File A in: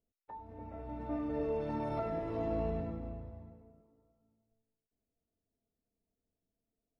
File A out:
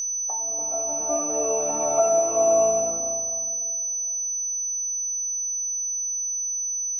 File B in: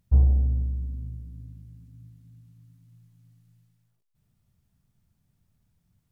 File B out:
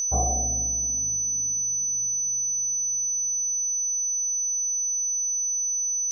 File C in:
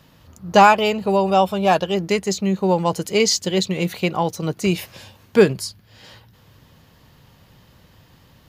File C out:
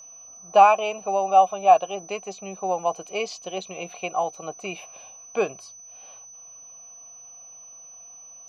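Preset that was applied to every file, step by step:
vowel filter a; whine 6000 Hz -48 dBFS; match loudness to -23 LUFS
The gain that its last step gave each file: +23.0, +24.5, +5.5 dB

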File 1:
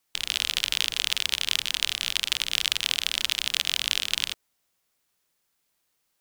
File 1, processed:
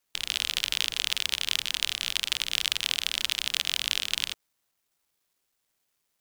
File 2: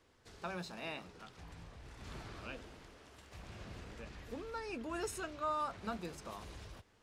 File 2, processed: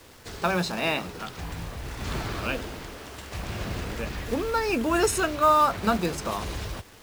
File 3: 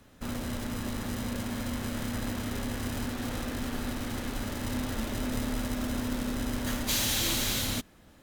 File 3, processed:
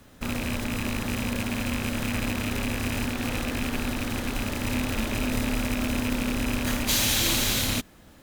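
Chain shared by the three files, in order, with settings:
rattling part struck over -34 dBFS, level -25 dBFS; companded quantiser 6-bit; match loudness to -27 LUFS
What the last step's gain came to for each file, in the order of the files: -2.0, +17.5, +4.5 dB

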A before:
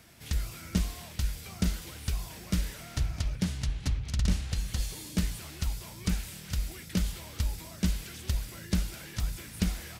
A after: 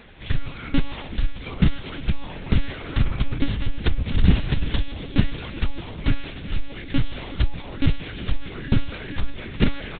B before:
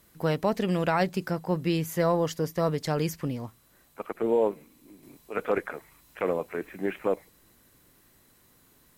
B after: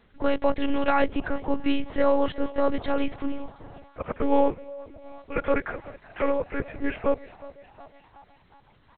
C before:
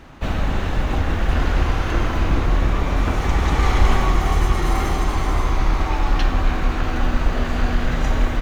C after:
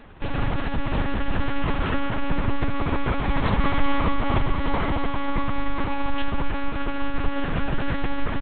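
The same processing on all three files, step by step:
frequency-shifting echo 0.365 s, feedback 57%, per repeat +100 Hz, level -19.5 dB; monotone LPC vocoder at 8 kHz 280 Hz; match loudness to -27 LUFS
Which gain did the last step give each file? +10.5, +4.0, -3.0 dB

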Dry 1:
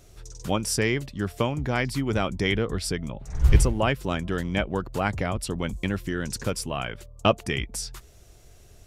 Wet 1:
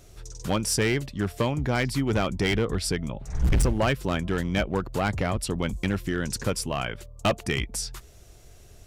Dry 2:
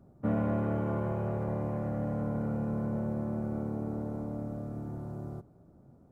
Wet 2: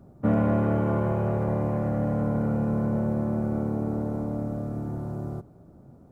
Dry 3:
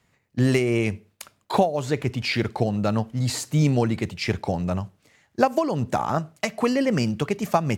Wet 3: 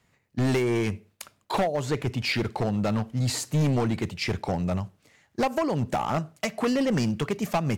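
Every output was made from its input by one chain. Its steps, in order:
hard clip -19 dBFS; match loudness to -27 LUFS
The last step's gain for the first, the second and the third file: +1.5, +7.0, -1.0 dB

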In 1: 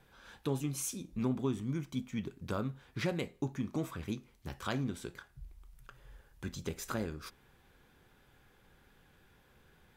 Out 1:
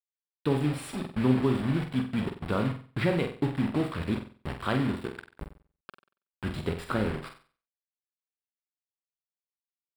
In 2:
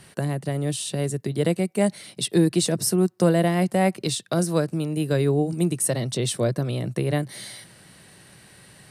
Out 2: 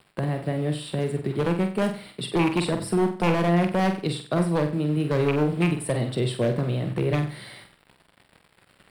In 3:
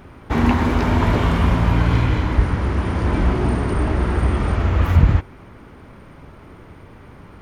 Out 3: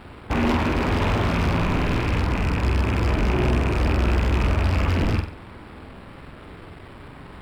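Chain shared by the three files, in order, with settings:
rattling part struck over -19 dBFS, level -14 dBFS; in parallel at -0.5 dB: limiter -12.5 dBFS; on the sum: requantised 6-bit, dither none; running mean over 7 samples; wavefolder -10 dBFS; on a send: flutter echo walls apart 8 m, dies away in 0.4 s; on the sum: normalise peaks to -12 dBFS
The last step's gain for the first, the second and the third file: +2.0, -5.5, -6.5 dB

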